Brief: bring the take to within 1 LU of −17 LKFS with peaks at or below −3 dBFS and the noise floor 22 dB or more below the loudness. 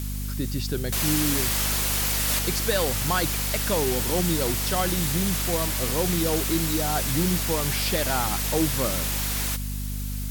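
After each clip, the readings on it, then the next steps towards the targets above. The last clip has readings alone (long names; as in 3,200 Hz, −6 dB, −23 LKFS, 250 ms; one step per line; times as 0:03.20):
mains hum 50 Hz; hum harmonics up to 250 Hz; level of the hum −28 dBFS; background noise floor −30 dBFS; target noise floor −46 dBFS; integrated loudness −24.0 LKFS; sample peak −11.0 dBFS; target loudness −17.0 LKFS
→ mains-hum notches 50/100/150/200/250 Hz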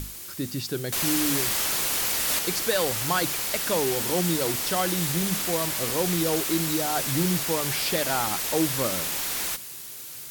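mains hum none found; background noise floor −39 dBFS; target noise floor −46 dBFS
→ noise reduction from a noise print 7 dB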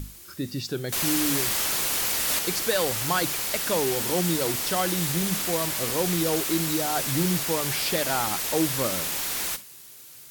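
background noise floor −46 dBFS; integrated loudness −24.0 LKFS; sample peak −12.0 dBFS; target loudness −17.0 LKFS
→ level +7 dB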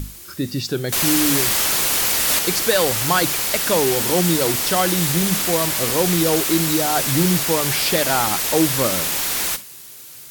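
integrated loudness −17.0 LKFS; sample peak −5.0 dBFS; background noise floor −39 dBFS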